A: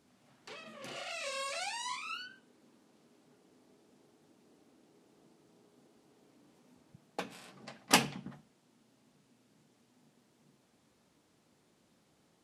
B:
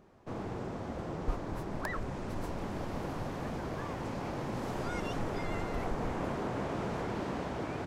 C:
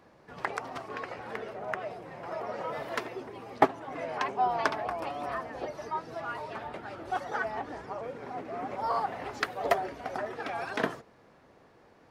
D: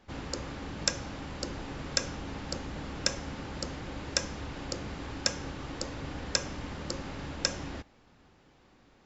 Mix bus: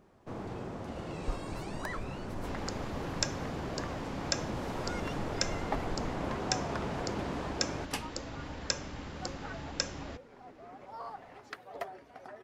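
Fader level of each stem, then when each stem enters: -12.0, -1.5, -13.5, -3.5 dB; 0.00, 0.00, 2.10, 2.35 s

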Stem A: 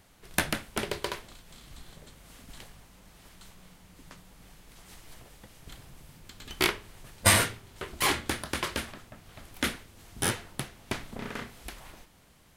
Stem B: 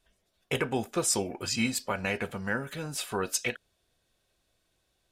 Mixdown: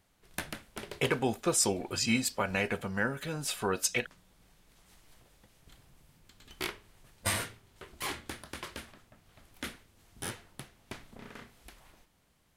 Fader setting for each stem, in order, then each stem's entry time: -10.5, 0.0 dB; 0.00, 0.50 s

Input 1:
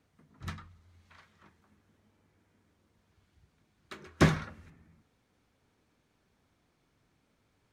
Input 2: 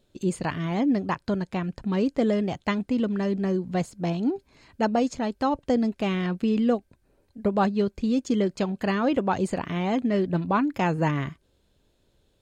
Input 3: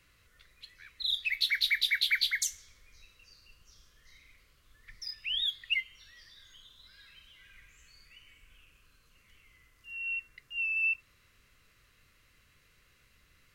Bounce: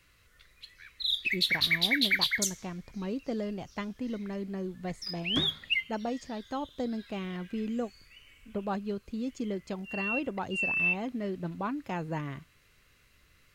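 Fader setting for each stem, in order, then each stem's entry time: -12.5, -10.5, +1.5 dB; 1.15, 1.10, 0.00 s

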